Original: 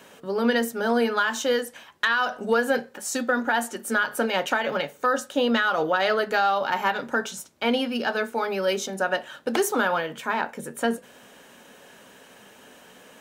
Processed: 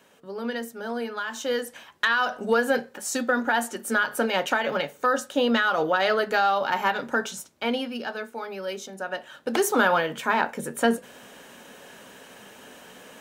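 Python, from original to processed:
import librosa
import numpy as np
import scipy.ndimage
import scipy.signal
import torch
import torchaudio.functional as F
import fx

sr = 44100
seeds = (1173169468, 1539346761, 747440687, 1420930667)

y = fx.gain(x, sr, db=fx.line((1.2, -8.5), (1.73, 0.0), (7.34, 0.0), (8.26, -8.0), (9.02, -8.0), (9.82, 3.0)))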